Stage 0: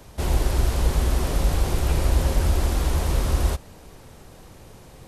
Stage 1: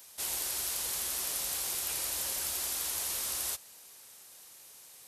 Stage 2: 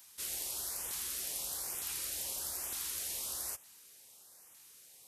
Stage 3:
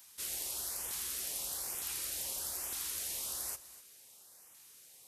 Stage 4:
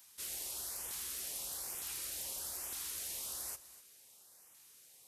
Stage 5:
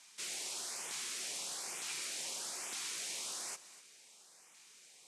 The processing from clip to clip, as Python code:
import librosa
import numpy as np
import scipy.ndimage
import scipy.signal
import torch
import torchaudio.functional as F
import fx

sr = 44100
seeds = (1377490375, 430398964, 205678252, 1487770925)

y1 = np.diff(x, prepend=0.0)
y1 = y1 * librosa.db_to_amplitude(3.5)
y2 = fx.filter_lfo_notch(y1, sr, shape='saw_up', hz=1.1, low_hz=440.0, high_hz=4800.0, q=1.2)
y2 = y2 * librosa.db_to_amplitude(-4.5)
y3 = y2 + 10.0 ** (-16.5 / 20.0) * np.pad(y2, (int(249 * sr / 1000.0), 0))[:len(y2)]
y4 = np.clip(y3, -10.0 ** (-31.0 / 20.0), 10.0 ** (-31.0 / 20.0))
y4 = y4 * librosa.db_to_amplitude(-3.0)
y5 = fx.cabinet(y4, sr, low_hz=170.0, low_slope=24, high_hz=8300.0, hz=(280.0, 540.0, 2300.0), db=(-4, -3, 5))
y5 = y5 * librosa.db_to_amplitude(4.5)